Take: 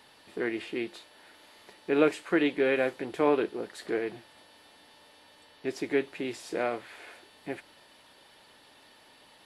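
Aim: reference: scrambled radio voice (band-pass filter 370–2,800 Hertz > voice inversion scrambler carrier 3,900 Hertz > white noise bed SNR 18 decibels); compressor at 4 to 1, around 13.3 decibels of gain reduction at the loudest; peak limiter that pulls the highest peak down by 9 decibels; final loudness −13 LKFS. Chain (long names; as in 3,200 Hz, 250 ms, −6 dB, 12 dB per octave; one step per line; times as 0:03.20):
downward compressor 4 to 1, threshold −35 dBFS
brickwall limiter −30.5 dBFS
band-pass filter 370–2,800 Hz
voice inversion scrambler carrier 3,900 Hz
white noise bed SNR 18 dB
level +29 dB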